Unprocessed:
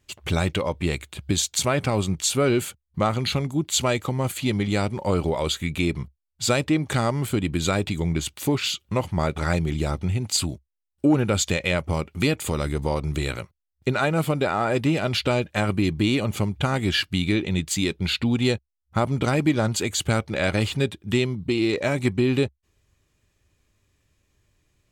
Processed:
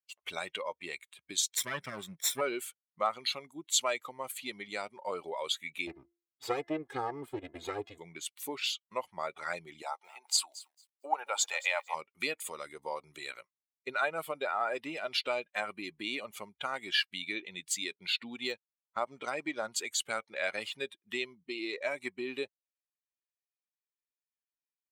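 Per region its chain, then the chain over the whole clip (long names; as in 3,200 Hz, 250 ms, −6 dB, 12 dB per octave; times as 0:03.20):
0:01.57–0:02.41: lower of the sound and its delayed copy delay 0.55 ms + parametric band 140 Hz +7.5 dB 1.1 octaves
0:05.87–0:07.98: lower of the sound and its delayed copy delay 2.4 ms + spectral tilt −3 dB per octave + hum removal 342.9 Hz, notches 6
0:09.82–0:11.95: high-pass filter 630 Hz + parametric band 840 Hz +10 dB 0.66 octaves + feedback echo at a low word length 224 ms, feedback 35%, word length 7 bits, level −12 dB
0:18.47–0:19.57: mu-law and A-law mismatch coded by A + linear-phase brick-wall low-pass 9,300 Hz + de-essing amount 55%
whole clip: spectral dynamics exaggerated over time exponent 1.5; high-pass filter 650 Hz 12 dB per octave; level −3 dB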